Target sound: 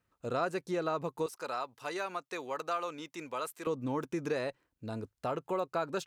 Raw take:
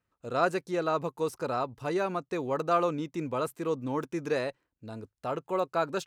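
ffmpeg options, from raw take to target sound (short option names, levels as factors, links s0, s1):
-filter_complex "[0:a]asettb=1/sr,asplit=3[s0][s1][s2];[s0]atrim=end=1.264[s3];[s1]atrim=start=1.26:end=3.67,asetpts=PTS-STARTPTS,afade=t=in:d=0.004:c=qsin,afade=t=out:st=2.406:d=0.004:c=qsin,highpass=f=1400:p=1[s4];[s2]atrim=start=3.666[s5];[s3][s4]acrossfade=d=0.004:c1=hsin:c2=qsin[s6];[s6][s5]acrossfade=d=0.004:c1=qsin:c2=hsin,acompressor=threshold=0.0178:ratio=2.5,volume=1.33"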